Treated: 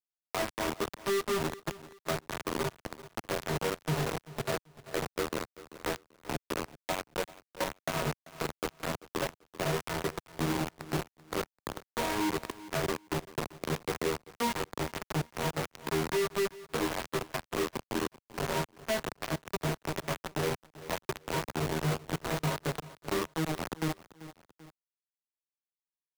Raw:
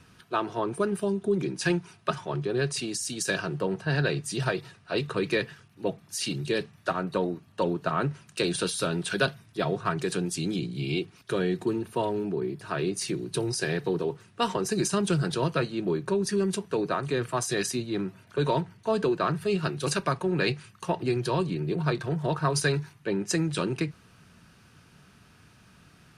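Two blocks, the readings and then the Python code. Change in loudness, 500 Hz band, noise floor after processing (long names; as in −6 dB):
−5.5 dB, −6.0 dB, below −85 dBFS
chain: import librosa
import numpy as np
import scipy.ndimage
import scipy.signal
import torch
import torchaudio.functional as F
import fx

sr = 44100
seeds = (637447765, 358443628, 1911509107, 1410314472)

p1 = scipy.signal.sosfilt(scipy.signal.butter(4, 1000.0, 'lowpass', fs=sr, output='sos'), x)
p2 = fx.rider(p1, sr, range_db=3, speed_s=0.5)
p3 = 10.0 ** (-18.5 / 20.0) * np.tanh(p2 / 10.0 ** (-18.5 / 20.0))
p4 = fx.stiff_resonator(p3, sr, f0_hz=77.0, decay_s=0.51, stiffness=0.002)
p5 = fx.quant_dither(p4, sr, seeds[0], bits=6, dither='none')
p6 = p5 + fx.echo_feedback(p5, sr, ms=388, feedback_pct=28, wet_db=-20.0, dry=0)
p7 = fx.band_squash(p6, sr, depth_pct=40)
y = p7 * librosa.db_to_amplitude(6.0)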